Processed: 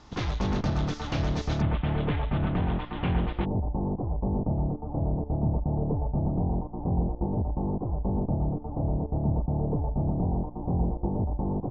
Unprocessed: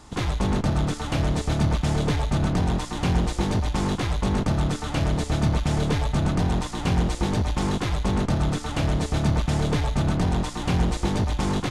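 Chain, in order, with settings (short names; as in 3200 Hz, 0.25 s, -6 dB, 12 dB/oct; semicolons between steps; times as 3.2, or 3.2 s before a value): steep low-pass 6300 Hz 48 dB/oct, from 1.6 s 3300 Hz, from 3.44 s 890 Hz; gain -4 dB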